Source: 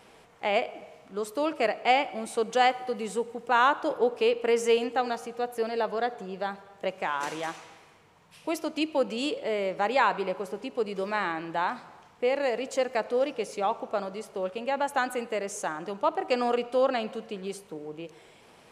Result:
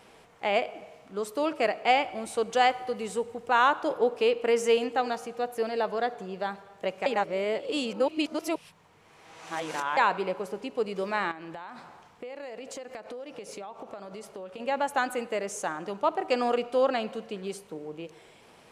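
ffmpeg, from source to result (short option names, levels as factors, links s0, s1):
-filter_complex "[0:a]asettb=1/sr,asplit=3[s0][s1][s2];[s0]atrim=end=1.904[s3];[s1]atrim=start=1.9:end=3.74,asetpts=PTS-STARTPTS,afade=t=in:d=0.004:c=qsin,afade=t=out:st=1.836:d=0.004:c=qsin,lowshelf=f=130:t=q:w=1.5:g=6.5[s4];[s2]atrim=start=3.736[s5];[s3][s4]acrossfade=d=0.004:c1=hsin:c2=qsin[s6];[s6][s5]acrossfade=d=0.004:c1=qsin:c2=hsin,asettb=1/sr,asplit=3[s7][s8][s9];[s7]atrim=end=11.314[s10];[s8]atrim=start=11.31:end=14.6,asetpts=PTS-STARTPTS,afade=t=in:d=0.004:c=qsin,afade=t=out:st=3.286:d=0.004:c=qsin,acompressor=threshold=0.0158:ratio=16:attack=3.2:release=140:knee=1:detection=peak[s11];[s9]atrim=start=14.596[s12];[s10][s11]acrossfade=d=0.004:c1=hsin:c2=qsin[s13];[s13][s12]acrossfade=d=0.004:c1=qsin:c2=hsin,asplit=3[s14][s15][s16];[s14]atrim=end=7.062[s17];[s15]atrim=start=7.058:end=9.972,asetpts=PTS-STARTPTS,areverse[s18];[s16]atrim=start=9.968[s19];[s17][s18]acrossfade=d=0.004:c1=hsin:c2=hsin[s20];[s20][s19]acrossfade=d=0.004:c1=hsin:c2=hsin"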